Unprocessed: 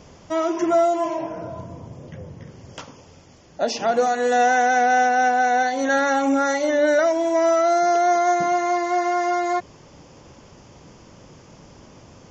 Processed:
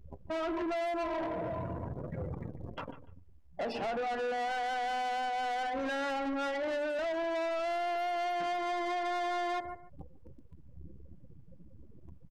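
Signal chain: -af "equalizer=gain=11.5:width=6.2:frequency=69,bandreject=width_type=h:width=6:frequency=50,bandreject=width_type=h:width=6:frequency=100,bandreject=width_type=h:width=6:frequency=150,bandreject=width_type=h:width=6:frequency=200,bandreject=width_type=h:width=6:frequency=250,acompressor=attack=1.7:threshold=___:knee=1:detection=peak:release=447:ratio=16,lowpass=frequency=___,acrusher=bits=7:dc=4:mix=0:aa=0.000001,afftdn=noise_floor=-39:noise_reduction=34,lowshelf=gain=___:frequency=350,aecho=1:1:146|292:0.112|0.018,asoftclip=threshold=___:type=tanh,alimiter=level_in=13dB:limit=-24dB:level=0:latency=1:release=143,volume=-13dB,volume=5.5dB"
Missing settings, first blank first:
-20dB, 2700, -2.5, -31.5dB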